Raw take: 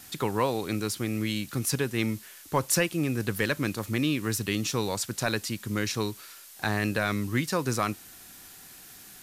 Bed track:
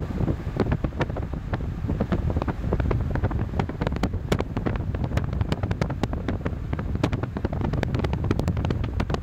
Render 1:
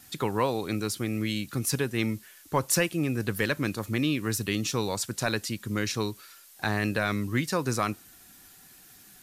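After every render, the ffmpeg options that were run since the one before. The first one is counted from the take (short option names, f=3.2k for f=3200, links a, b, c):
-af "afftdn=nr=6:nf=-49"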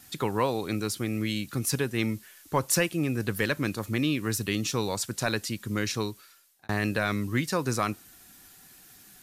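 -filter_complex "[0:a]asplit=2[a][b];[a]atrim=end=6.69,asetpts=PTS-STARTPTS,afade=t=out:st=5.96:d=0.73[c];[b]atrim=start=6.69,asetpts=PTS-STARTPTS,afade=t=in:d=0.004:c=hsin[d];[c][d]concat=n=2:v=0:a=1"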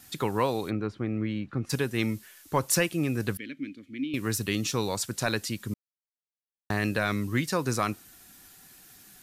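-filter_complex "[0:a]asplit=3[a][b][c];[a]afade=t=out:st=0.69:d=0.02[d];[b]lowpass=1.6k,afade=t=in:st=0.69:d=0.02,afade=t=out:st=1.69:d=0.02[e];[c]afade=t=in:st=1.69:d=0.02[f];[d][e][f]amix=inputs=3:normalize=0,asettb=1/sr,asplit=3[g][h][i];[g]atrim=end=3.374[j];[h]atrim=start=3.37:end=4.14,asetpts=PTS-STARTPTS,afade=t=in:d=0.004:c=qsin,afade=t=out:st=0.766:d=0.004:c=qsin,asplit=3[k][l][m];[k]bandpass=f=270:t=q:w=8,volume=0dB[n];[l]bandpass=f=2.29k:t=q:w=8,volume=-6dB[o];[m]bandpass=f=3.01k:t=q:w=8,volume=-9dB[p];[n][o][p]amix=inputs=3:normalize=0[q];[i]atrim=start=4.136[r];[j][q]acrossfade=d=0.004:c1=hsin:c2=qsin[s];[s][r]acrossfade=d=0.004:c1=qsin:c2=hsin,asplit=3[t][u][v];[t]atrim=end=5.74,asetpts=PTS-STARTPTS,afade=t=out:st=5.736:d=0.004:c=hsin[w];[u]atrim=start=5.74:end=6.7,asetpts=PTS-STARTPTS,volume=0[x];[v]atrim=start=6.7,asetpts=PTS-STARTPTS,afade=t=in:d=0.004:c=hsin[y];[w][x][y]concat=n=3:v=0:a=1"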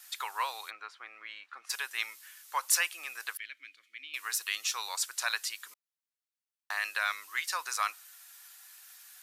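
-af "highpass=f=970:w=0.5412,highpass=f=970:w=1.3066"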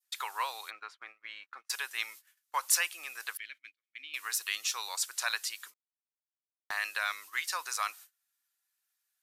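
-af "agate=range=-29dB:threshold=-48dB:ratio=16:detection=peak,adynamicequalizer=threshold=0.00794:dfrequency=1500:dqfactor=0.74:tfrequency=1500:tqfactor=0.74:attack=5:release=100:ratio=0.375:range=2:mode=cutabove:tftype=bell"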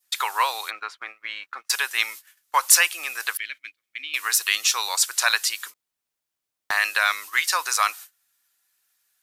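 -af "volume=12dB,alimiter=limit=-1dB:level=0:latency=1"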